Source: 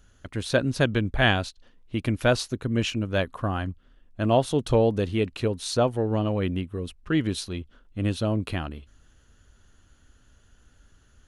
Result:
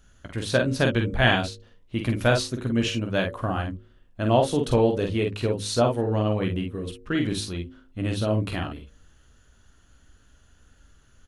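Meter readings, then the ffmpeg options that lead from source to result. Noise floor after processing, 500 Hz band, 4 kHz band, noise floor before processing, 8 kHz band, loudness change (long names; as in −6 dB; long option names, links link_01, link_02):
−58 dBFS, +1.0 dB, +1.5 dB, −60 dBFS, +1.5 dB, +1.0 dB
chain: -filter_complex "[0:a]bandreject=frequency=51.97:width_type=h:width=4,bandreject=frequency=103.94:width_type=h:width=4,bandreject=frequency=155.91:width_type=h:width=4,bandreject=frequency=207.88:width_type=h:width=4,bandreject=frequency=259.85:width_type=h:width=4,bandreject=frequency=311.82:width_type=h:width=4,bandreject=frequency=363.79:width_type=h:width=4,bandreject=frequency=415.76:width_type=h:width=4,bandreject=frequency=467.73:width_type=h:width=4,bandreject=frequency=519.7:width_type=h:width=4,bandreject=frequency=571.67:width_type=h:width=4,asplit=2[link_01][link_02];[link_02]aecho=0:1:17|47|58:0.299|0.562|0.211[link_03];[link_01][link_03]amix=inputs=2:normalize=0"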